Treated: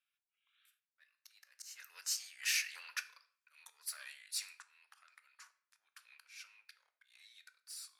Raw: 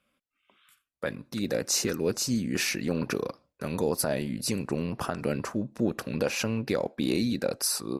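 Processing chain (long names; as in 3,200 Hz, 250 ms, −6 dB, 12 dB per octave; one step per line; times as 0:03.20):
one-sided soft clipper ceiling −21.5 dBFS
source passing by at 0:03.08, 19 m/s, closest 19 metres
volume swells 418 ms
high-pass filter 1,500 Hz 24 dB per octave
on a send: convolution reverb RT60 0.60 s, pre-delay 7 ms, DRR 10.5 dB
on the sum: level −2 dB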